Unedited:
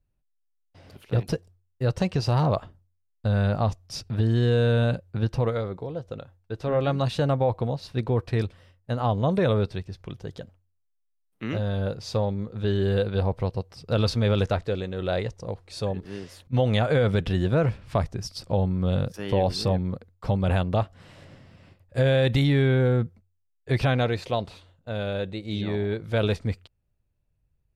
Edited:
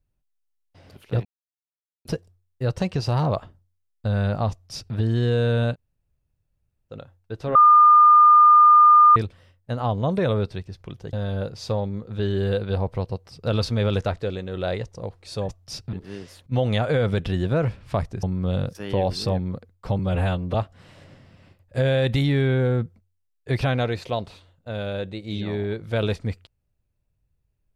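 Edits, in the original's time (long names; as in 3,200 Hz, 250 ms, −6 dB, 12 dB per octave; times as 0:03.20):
0:01.25: splice in silence 0.80 s
0:03.71–0:04.15: duplicate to 0:15.94
0:04.93–0:06.12: fill with room tone, crossfade 0.06 s
0:06.75–0:08.36: beep over 1,210 Hz −9 dBFS
0:10.33–0:11.58: remove
0:18.24–0:18.62: remove
0:20.38–0:20.75: time-stretch 1.5×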